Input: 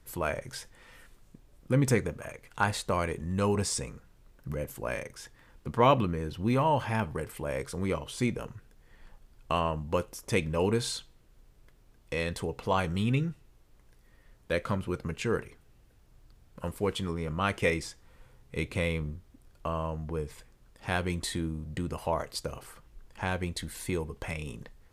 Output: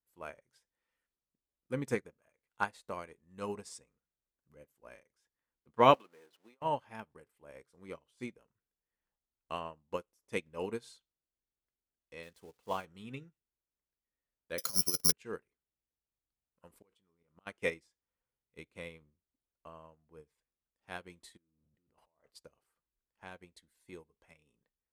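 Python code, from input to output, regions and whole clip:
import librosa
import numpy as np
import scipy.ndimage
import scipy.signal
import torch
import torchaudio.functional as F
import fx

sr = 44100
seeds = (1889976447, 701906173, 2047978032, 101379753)

y = fx.chain(x, sr, fx.zero_step(step_db=-38.0),
    fx.highpass(hz=440.0, slope=12),
    fx.over_compress(threshold_db=-35.0, ratio=-0.5), at=(5.94, 6.62))
y = fx.chain(y, sr, fx.crossing_spikes(level_db=-30.0),
    fx.high_shelf(hz=9300.0, db=-10.0), at=(12.23, 12.85))
y = fx.chain(y, sr, fx.peak_eq(hz=63.0, db=-2.0, octaves=0.32),
    fx.over_compress(threshold_db=-32.0, ratio=-0.5),
    fx.resample_bad(factor=8, down='none', up='zero_stuff'), at=(14.58, 15.12))
y = fx.chain(y, sr, fx.gate_flip(shuts_db=-24.0, range_db=-30),
    fx.env_flatten(amount_pct=70), at=(16.7, 17.47))
y = fx.chain(y, sr, fx.high_shelf(hz=3400.0, db=-11.5),
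    fx.over_compress(threshold_db=-43.0, ratio=-1.0), at=(21.37, 22.3))
y = scipy.signal.sosfilt(scipy.signal.butter(2, 53.0, 'highpass', fs=sr, output='sos'), y)
y = fx.peak_eq(y, sr, hz=100.0, db=-10.0, octaves=1.3)
y = fx.upward_expand(y, sr, threshold_db=-42.0, expansion=2.5)
y = y * librosa.db_to_amplitude(1.5)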